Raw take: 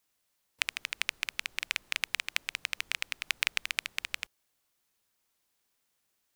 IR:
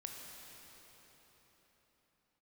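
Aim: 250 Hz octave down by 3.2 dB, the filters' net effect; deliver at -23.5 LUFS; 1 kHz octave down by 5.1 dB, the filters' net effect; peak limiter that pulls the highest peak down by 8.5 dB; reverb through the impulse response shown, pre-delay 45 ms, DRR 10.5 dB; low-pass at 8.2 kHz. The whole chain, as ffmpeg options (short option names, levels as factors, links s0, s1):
-filter_complex "[0:a]lowpass=8200,equalizer=f=250:t=o:g=-4,equalizer=f=1000:t=o:g=-7,alimiter=limit=0.178:level=0:latency=1,asplit=2[s0][s1];[1:a]atrim=start_sample=2205,adelay=45[s2];[s1][s2]afir=irnorm=-1:irlink=0,volume=0.398[s3];[s0][s3]amix=inputs=2:normalize=0,volume=5.31"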